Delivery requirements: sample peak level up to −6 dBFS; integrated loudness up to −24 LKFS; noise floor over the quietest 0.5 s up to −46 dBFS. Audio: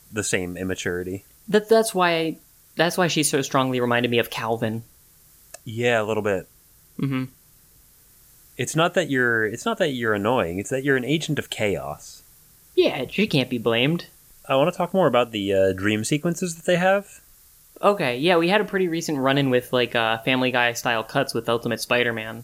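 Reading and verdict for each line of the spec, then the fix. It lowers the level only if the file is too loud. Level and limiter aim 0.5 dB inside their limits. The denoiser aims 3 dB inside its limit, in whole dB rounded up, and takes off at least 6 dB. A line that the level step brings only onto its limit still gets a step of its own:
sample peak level −4.5 dBFS: out of spec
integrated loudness −22.0 LKFS: out of spec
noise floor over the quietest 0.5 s −54 dBFS: in spec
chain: level −2.5 dB

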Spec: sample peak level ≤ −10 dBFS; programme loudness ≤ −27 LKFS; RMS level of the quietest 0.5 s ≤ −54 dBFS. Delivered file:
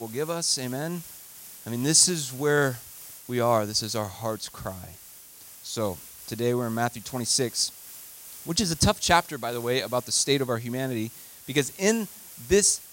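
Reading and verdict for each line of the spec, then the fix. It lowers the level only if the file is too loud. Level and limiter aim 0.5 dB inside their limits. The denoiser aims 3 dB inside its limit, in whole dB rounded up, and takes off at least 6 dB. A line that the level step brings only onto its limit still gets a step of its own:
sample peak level −5.0 dBFS: out of spec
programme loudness −25.0 LKFS: out of spec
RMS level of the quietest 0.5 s −48 dBFS: out of spec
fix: broadband denoise 7 dB, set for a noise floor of −48 dBFS
level −2.5 dB
brickwall limiter −10.5 dBFS

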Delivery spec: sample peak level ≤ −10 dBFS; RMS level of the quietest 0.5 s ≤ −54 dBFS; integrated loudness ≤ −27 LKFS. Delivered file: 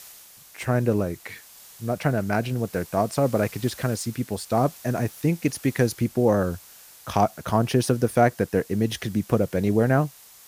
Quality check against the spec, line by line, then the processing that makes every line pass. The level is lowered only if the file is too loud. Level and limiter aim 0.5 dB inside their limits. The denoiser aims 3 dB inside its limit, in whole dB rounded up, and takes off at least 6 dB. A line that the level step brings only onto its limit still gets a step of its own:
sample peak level −5.5 dBFS: out of spec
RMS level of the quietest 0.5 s −48 dBFS: out of spec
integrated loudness −24.5 LKFS: out of spec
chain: broadband denoise 6 dB, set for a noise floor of −48 dBFS
level −3 dB
brickwall limiter −10.5 dBFS

